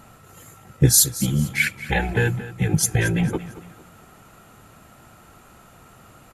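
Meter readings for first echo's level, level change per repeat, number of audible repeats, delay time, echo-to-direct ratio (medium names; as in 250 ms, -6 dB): -15.5 dB, -9.0 dB, 3, 225 ms, -15.0 dB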